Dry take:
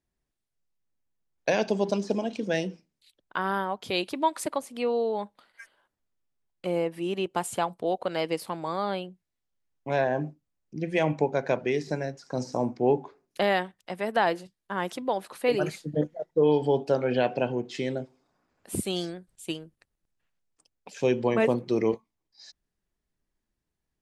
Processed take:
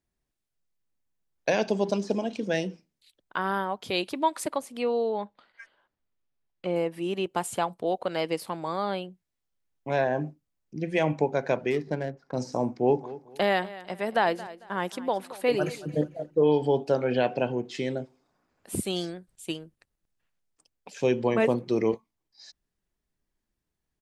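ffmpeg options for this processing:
ffmpeg -i in.wav -filter_complex "[0:a]asettb=1/sr,asplit=3[link_01][link_02][link_03];[link_01]atrim=end=5.104[link_04];[link_02]atrim=start=5.1:end=6.76,asetpts=PTS-STARTPTS,afade=type=in:duration=0.004:curve=qsin,afade=type=out:start_time=1.656:duration=0.004:curve=qsin,lowpass=4600[link_05];[link_03]atrim=start=6.756[link_06];[link_04][link_05]acrossfade=duration=0.004:curve1=hsin:curve2=qsin[link_07];[link_07][link_06]acrossfade=duration=0.004:curve1=qsin:curve2=hsin,asplit=3[link_08][link_09][link_10];[link_08]afade=type=out:start_time=11.7:duration=0.02[link_11];[link_09]adynamicsmooth=sensitivity=6:basefreq=1300,afade=type=in:start_time=11.7:duration=0.02,afade=type=out:start_time=12.35:duration=0.02[link_12];[link_10]afade=type=in:start_time=12.35:duration=0.02[link_13];[link_11][link_12][link_13]amix=inputs=3:normalize=0,asplit=3[link_14][link_15][link_16];[link_14]afade=type=out:start_time=12.87:duration=0.02[link_17];[link_15]aecho=1:1:224|448|672:0.141|0.041|0.0119,afade=type=in:start_time=12.87:duration=0.02,afade=type=out:start_time=16.51:duration=0.02[link_18];[link_16]afade=type=in:start_time=16.51:duration=0.02[link_19];[link_17][link_18][link_19]amix=inputs=3:normalize=0" out.wav

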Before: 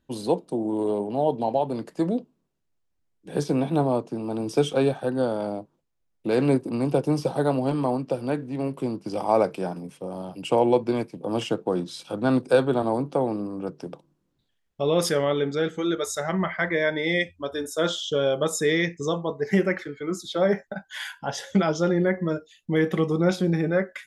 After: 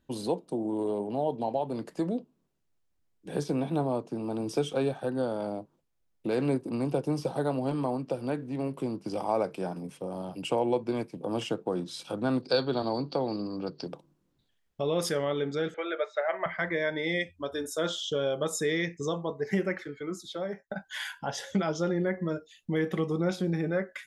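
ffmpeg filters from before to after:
ffmpeg -i in.wav -filter_complex "[0:a]asettb=1/sr,asplit=3[link_01][link_02][link_03];[link_01]atrim=end=12.424[link_04];[link_02]atrim=start=12.42:end=13.88,asetpts=PTS-STARTPTS,afade=type=in:duration=0.004:curve=qsin,afade=type=out:start_time=1.456:duration=0.004:curve=qsin,lowpass=frequency=4500:width_type=q:width=15[link_05];[link_03]atrim=start=13.876[link_06];[link_04][link_05]acrossfade=duration=0.004:curve1=hsin:curve2=qsin[link_07];[link_07][link_06]acrossfade=duration=0.004:curve1=qsin:curve2=hsin,asettb=1/sr,asplit=3[link_08][link_09][link_10];[link_08]atrim=end=15.744[link_11];[link_09]atrim=start=15.74:end=16.46,asetpts=PTS-STARTPTS,afade=type=in:duration=0.004:curve=qsin,afade=type=out:start_time=0.716:duration=0.004:curve=qsin,highpass=frequency=440:width=0.5412,highpass=frequency=440:width=1.3066,equalizer=frequency=620:width_type=q:width=4:gain=10,equalizer=frequency=1600:width_type=q:width=4:gain=5,equalizer=frequency=2300:width_type=q:width=4:gain=8,lowpass=frequency=3100:width=0.5412,lowpass=frequency=3100:width=1.3066[link_12];[link_10]atrim=start=16.456[link_13];[link_11][link_12]acrossfade=duration=0.004:curve1=hsin:curve2=qsin[link_14];[link_14][link_13]acrossfade=duration=0.004:curve1=qsin:curve2=hsin,asplit=2[link_15][link_16];[link_15]atrim=end=20.7,asetpts=PTS-STARTPTS,afade=type=out:start_time=19.69:duration=1.01:silence=0.11885[link_17];[link_16]atrim=start=20.7,asetpts=PTS-STARTPTS,afade=type=in:duration=0.004:curve=hsin:silence=0.11885[link_18];[link_17][link_18]concat=n=2:v=0:a=1,acompressor=threshold=-36dB:ratio=1.5" out.wav

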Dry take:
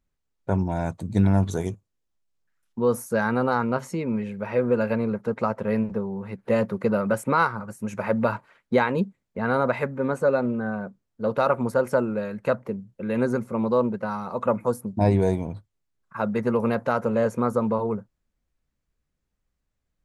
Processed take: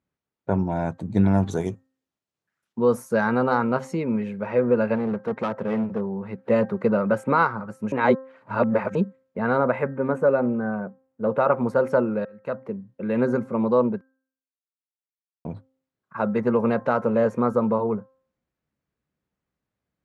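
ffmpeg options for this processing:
ffmpeg -i in.wav -filter_complex "[0:a]asettb=1/sr,asplit=3[link_01][link_02][link_03];[link_01]atrim=end=1.274[link_04];[link_02]atrim=start=1.27:end=4.44,asetpts=PTS-STARTPTS,afade=type=in:duration=0.004:curve=qsin,afade=type=out:start_time=3.166:duration=0.004:curve=qsin,highshelf=frequency=4200:gain=7.5[link_05];[link_03]atrim=start=4.436[link_06];[link_04][link_05]acrossfade=duration=0.004:curve1=hsin:curve2=qsin[link_07];[link_07][link_06]acrossfade=duration=0.004:curve1=qsin:curve2=hsin,asettb=1/sr,asplit=3[link_08][link_09][link_10];[link_08]atrim=end=4.954[link_11];[link_09]atrim=start=4.95:end=6.01,asetpts=PTS-STARTPTS,afade=type=in:duration=0.004:curve=qsin,afade=type=out:start_time=1.056:duration=0.004:curve=qsin,asoftclip=type=hard:threshold=-22.5dB[link_12];[link_10]atrim=start=6.006[link_13];[link_11][link_12]acrossfade=duration=0.004:curve1=hsin:curve2=qsin[link_14];[link_14][link_13]acrossfade=duration=0.004:curve1=qsin:curve2=hsin,asettb=1/sr,asplit=3[link_15][link_16][link_17];[link_15]atrim=end=9.584[link_18];[link_16]atrim=start=9.58:end=11.51,asetpts=PTS-STARTPTS,afade=type=in:duration=0.004:curve=qsin,afade=type=out:start_time=1.926:duration=0.004:curve=qsin,equalizer=frequency=4600:width=1.5:gain=-11[link_19];[link_17]atrim=start=11.506[link_20];[link_18][link_19]acrossfade=duration=0.004:curve1=hsin:curve2=qsin[link_21];[link_21][link_20]acrossfade=duration=0.004:curve1=qsin:curve2=hsin,asplit=6[link_22][link_23][link_24][link_25][link_26][link_27];[link_22]atrim=end=7.922[link_28];[link_23]atrim=start=7.918:end=8.952,asetpts=PTS-STARTPTS,areverse[link_29];[link_24]atrim=start=8.948:end=12.25,asetpts=PTS-STARTPTS,afade=type=out:start_time=3.298:duration=0.004:curve=hsin[link_30];[link_25]atrim=start=12.25:end=14.01,asetpts=PTS-STARTPTS,afade=type=in:duration=0.92:curve=qsin,afade=type=out:start_time=1.756:duration=0.004:curve=hsin[link_31];[link_26]atrim=start=14.01:end=15.45,asetpts=PTS-STARTPTS,volume=0[link_32];[link_27]atrim=start=15.45,asetpts=PTS-STARTPTS,afade=type=in:duration=0.004:curve=hsin[link_33];[link_28][link_29]acrossfade=duration=0.004:curve1=hsin:curve2=hsin[link_34];[link_30][link_31][link_32][link_33]concat=n=4:v=0:a=1[link_35];[link_34][link_35]acrossfade=duration=0.004:curve1=hsin:curve2=hsin,highpass=120,aemphasis=mode=reproduction:type=75fm,bandreject=frequency=263.5:width_type=h:width=4,bandreject=frequency=527:width_type=h:width=4,bandreject=frequency=790.5:width_type=h:width=4,bandreject=frequency=1054:width_type=h:width=4,bandreject=frequency=1317.5:width_type=h:width=4,bandreject=frequency=1581:width_type=h:width=4,bandreject=frequency=1844.5:width_type=h:width=4,volume=1.5dB" out.wav

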